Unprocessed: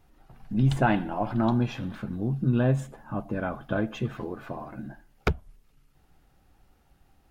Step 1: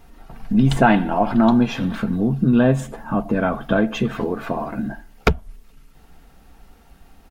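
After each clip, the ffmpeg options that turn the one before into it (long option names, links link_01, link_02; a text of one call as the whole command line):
ffmpeg -i in.wav -filter_complex "[0:a]equalizer=frequency=110:width=4.4:gain=-8.5,aecho=1:1:4.4:0.32,asplit=2[link_01][link_02];[link_02]acompressor=threshold=-32dB:ratio=6,volume=0dB[link_03];[link_01][link_03]amix=inputs=2:normalize=0,volume=6.5dB" out.wav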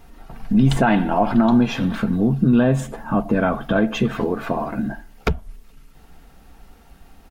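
ffmpeg -i in.wav -af "alimiter=level_in=7.5dB:limit=-1dB:release=50:level=0:latency=1,volume=-6dB" out.wav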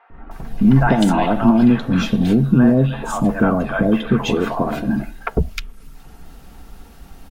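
ffmpeg -i in.wav -filter_complex "[0:a]asplit=2[link_01][link_02];[link_02]acompressor=threshold=-26dB:ratio=6,volume=-1dB[link_03];[link_01][link_03]amix=inputs=2:normalize=0,acrossover=split=670|2100[link_04][link_05][link_06];[link_04]adelay=100[link_07];[link_06]adelay=310[link_08];[link_07][link_05][link_08]amix=inputs=3:normalize=0,volume=1.5dB" out.wav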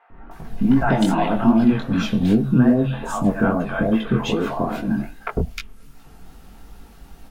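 ffmpeg -i in.wav -af "flanger=delay=18:depth=5.8:speed=2.5" out.wav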